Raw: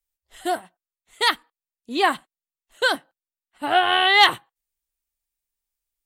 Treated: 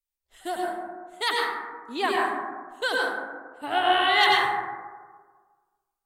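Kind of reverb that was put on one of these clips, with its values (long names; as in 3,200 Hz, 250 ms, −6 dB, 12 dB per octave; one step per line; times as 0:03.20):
dense smooth reverb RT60 1.5 s, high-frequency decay 0.3×, pre-delay 80 ms, DRR −3 dB
level −7.5 dB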